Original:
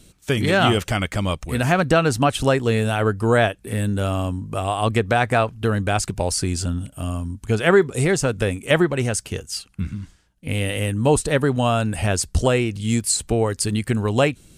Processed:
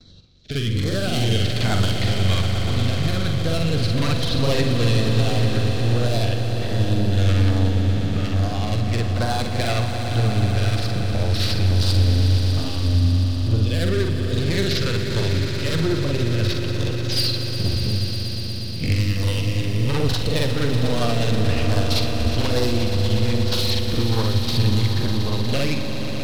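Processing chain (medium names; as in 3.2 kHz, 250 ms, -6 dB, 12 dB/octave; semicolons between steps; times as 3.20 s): tracing distortion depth 0.35 ms; steep low-pass 5.5 kHz 36 dB/octave; gate with hold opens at -43 dBFS; fifteen-band graphic EQ 100 Hz +6 dB, 400 Hz -4 dB, 4 kHz +11 dB; in parallel at +2.5 dB: peak limiter -12.5 dBFS, peak gain reduction 11.5 dB; on the sum: level rider; hard clipper -14 dBFS, distortion -8 dB; rotary cabinet horn 0.7 Hz, later 8 Hz, at 10.16 s; granular stretch 1.8×, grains 192 ms; LFO notch saw down 1.2 Hz 550–3100 Hz; echo with a slow build-up 120 ms, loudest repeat 5, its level -11 dB; on a send at -11.5 dB: reverberation RT60 1.3 s, pre-delay 46 ms; on the sum: trim -2.5 dB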